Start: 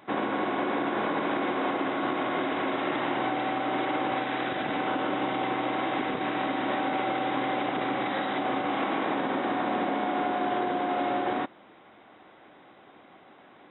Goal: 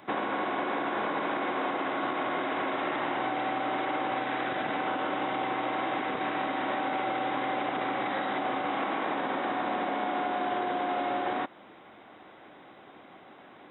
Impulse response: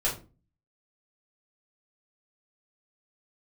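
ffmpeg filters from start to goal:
-filter_complex "[0:a]acrossover=split=510|2500[a][b][c];[a]acompressor=threshold=-39dB:ratio=4[d];[b]acompressor=threshold=-31dB:ratio=4[e];[c]acompressor=threshold=-49dB:ratio=4[f];[d][e][f]amix=inputs=3:normalize=0,volume=2dB"

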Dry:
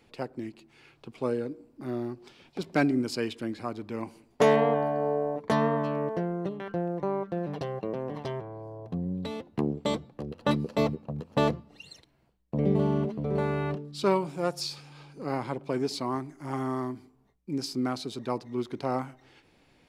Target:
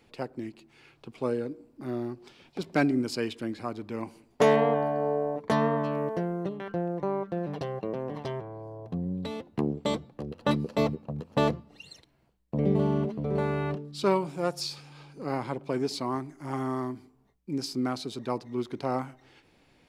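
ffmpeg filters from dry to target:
-filter_complex "[0:a]asettb=1/sr,asplit=3[a][b][c];[a]atrim=end=5.924[d];[b]atrim=start=5.92:end=6.44,asetpts=PTS-STARTPTS,afade=t=in:d=0.004:c=qsin,afade=t=out:st=0.516:d=0.004:c=qsin,highshelf=f=7.7k:g=8.5[e];[c]atrim=start=6.436[f];[d][e]acrossfade=d=0.004:c1=hsin:c2=qsin[g];[g][f]acrossfade=d=0.004:c1=qsin:c2=hsin"

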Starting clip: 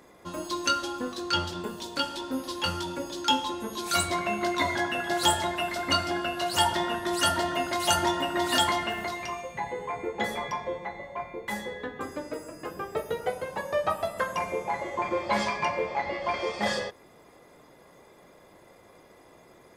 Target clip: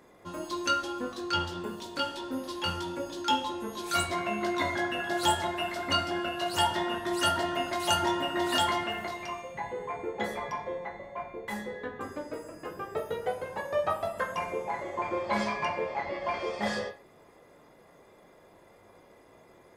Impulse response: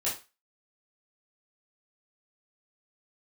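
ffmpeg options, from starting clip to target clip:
-filter_complex "[0:a]asplit=2[a][b];[1:a]atrim=start_sample=2205,lowpass=3.2k[c];[b][c]afir=irnorm=-1:irlink=0,volume=-8dB[d];[a][d]amix=inputs=2:normalize=0,volume=-5.5dB"

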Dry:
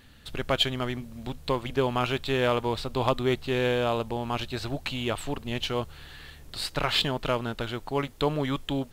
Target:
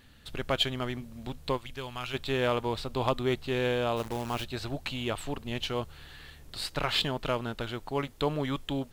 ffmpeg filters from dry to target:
-filter_complex "[0:a]asplit=3[a][b][c];[a]afade=t=out:st=1.56:d=0.02[d];[b]equalizer=f=350:w=0.3:g=-13.5,afade=t=in:st=1.56:d=0.02,afade=t=out:st=2.13:d=0.02[e];[c]afade=t=in:st=2.13:d=0.02[f];[d][e][f]amix=inputs=3:normalize=0,asplit=3[g][h][i];[g]afade=t=out:st=3.96:d=0.02[j];[h]acrusher=bits=7:dc=4:mix=0:aa=0.000001,afade=t=in:st=3.96:d=0.02,afade=t=out:st=4.43:d=0.02[k];[i]afade=t=in:st=4.43:d=0.02[l];[j][k][l]amix=inputs=3:normalize=0,volume=-3dB"

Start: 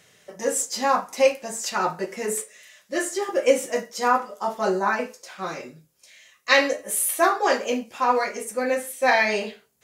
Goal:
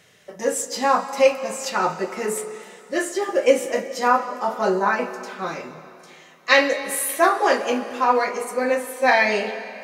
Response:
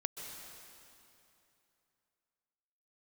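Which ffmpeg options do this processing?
-filter_complex "[0:a]asplit=2[a][b];[1:a]atrim=start_sample=2205,lowpass=5.4k[c];[b][c]afir=irnorm=-1:irlink=0,volume=-5dB[d];[a][d]amix=inputs=2:normalize=0,volume=-1dB"

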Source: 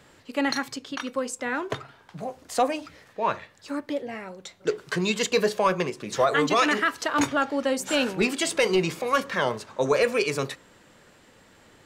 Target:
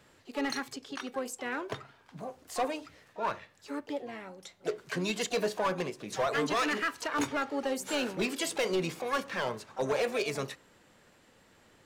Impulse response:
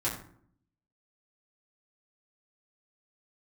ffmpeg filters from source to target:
-filter_complex "[0:a]asoftclip=type=hard:threshold=-17.5dB,asplit=2[a][b];[b]asetrate=66075,aresample=44100,atempo=0.66742,volume=-11dB[c];[a][c]amix=inputs=2:normalize=0,volume=-7dB"

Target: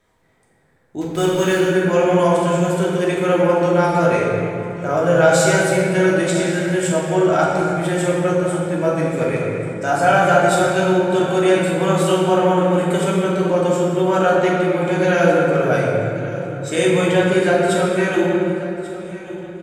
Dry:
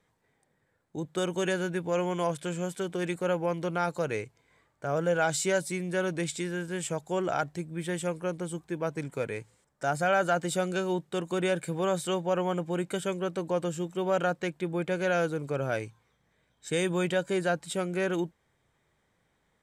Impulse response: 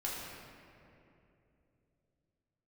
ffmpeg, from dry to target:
-filter_complex "[0:a]asettb=1/sr,asplit=3[a][b][c];[a]atrim=end=1.014[d];[b]atrim=start=1.01:end=1.59,asetpts=PTS-STARTPTS,afade=t=in:d=0.004:c=qsin,afade=t=out:st=0.576:d=0.004:c=qsin,acrusher=bits=6:mix=0:aa=0.5[e];[c]atrim=start=1.586[f];[d][e]acrossfade=d=0.004:c1=hsin:c2=qsin[g];[g][f]acrossfade=d=0.004:c1=qsin:c2=hsin,aecho=1:1:1139|2278|3417:0.141|0.0551|0.0215[h];[1:a]atrim=start_sample=2205,asetrate=39690,aresample=44100[i];[h][i]afir=irnorm=-1:irlink=0,volume=9dB"

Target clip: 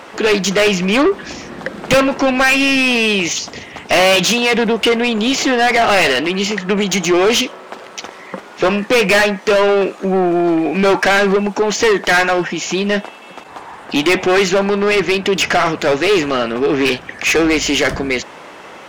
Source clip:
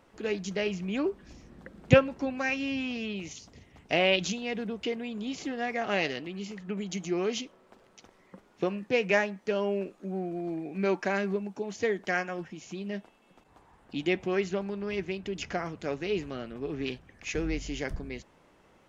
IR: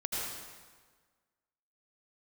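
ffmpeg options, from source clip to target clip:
-filter_complex "[0:a]asplit=2[a][b];[b]highpass=f=720:p=1,volume=36dB,asoftclip=type=tanh:threshold=-3.5dB[c];[a][c]amix=inputs=2:normalize=0,lowpass=f=5.1k:p=1,volume=-6dB,asettb=1/sr,asplit=3[d][e][f];[d]atrim=end=4.004[g];[e]atrim=start=4:end=4.54,asetpts=PTS-STARTPTS,afade=t=in:d=0.004:c=qsin,afade=t=out:st=0.536:d=0.004:c=qsin,highpass=93[h];[f]atrim=start=4.536[i];[g][h]acrossfade=d=0.004:c1=hsin:c2=qsin[j];[j][i]acrossfade=d=0.004:c1=qsin:c2=hsin"

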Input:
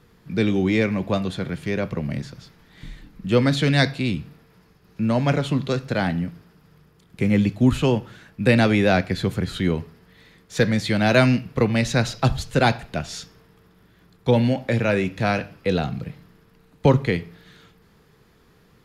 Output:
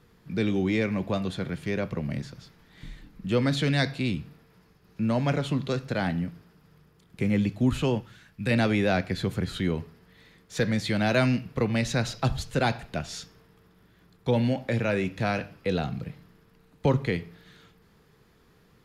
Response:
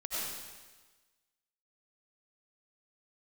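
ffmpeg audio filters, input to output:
-filter_complex "[0:a]asettb=1/sr,asplit=3[a][b][c];[a]atrim=end=8.014[d];[b]atrim=start=8.01:end=8.51,asetpts=PTS-STARTPTS,afade=t=in:d=0.004:c=qsin,afade=t=out:st=0.496:d=0.004:c=qsin,equalizer=f=470:t=o:w=2.8:g=-8[e];[c]atrim=start=8.506[f];[d][e]acrossfade=d=0.004:c1=hsin:c2=qsin[g];[g][f]acrossfade=d=0.004:c1=qsin:c2=hsin,asplit=2[h][i];[i]alimiter=limit=-15dB:level=0:latency=1:release=110,volume=-2dB[j];[h][j]amix=inputs=2:normalize=0,volume=-9dB"

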